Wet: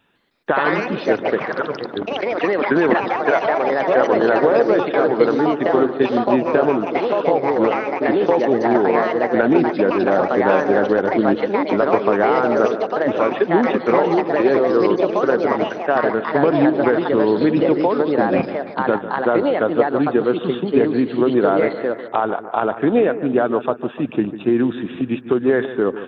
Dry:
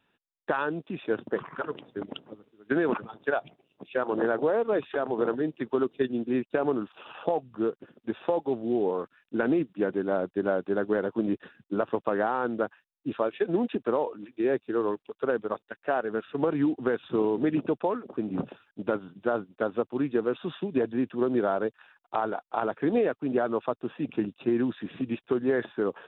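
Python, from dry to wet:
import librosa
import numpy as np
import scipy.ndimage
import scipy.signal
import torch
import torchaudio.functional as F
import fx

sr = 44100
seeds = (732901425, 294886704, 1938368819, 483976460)

y = fx.echo_pitch(x, sr, ms=155, semitones=3, count=3, db_per_echo=-3.0)
y = fx.echo_bbd(y, sr, ms=148, stages=2048, feedback_pct=54, wet_db=-13)
y = F.gain(torch.from_numpy(y), 9.0).numpy()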